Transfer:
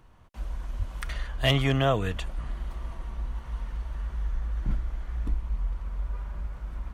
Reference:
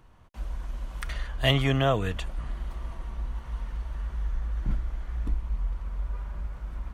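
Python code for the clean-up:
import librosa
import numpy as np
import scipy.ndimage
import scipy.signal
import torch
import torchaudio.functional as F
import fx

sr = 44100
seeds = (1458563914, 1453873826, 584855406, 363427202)

y = fx.fix_declip(x, sr, threshold_db=-13.5)
y = fx.highpass(y, sr, hz=140.0, slope=24, at=(0.78, 0.9), fade=0.02)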